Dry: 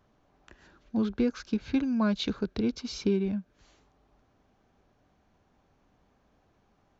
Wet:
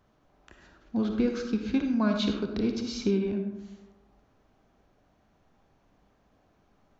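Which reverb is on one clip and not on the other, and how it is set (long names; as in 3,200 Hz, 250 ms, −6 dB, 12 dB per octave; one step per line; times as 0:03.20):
comb and all-pass reverb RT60 0.99 s, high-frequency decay 0.45×, pre-delay 15 ms, DRR 4 dB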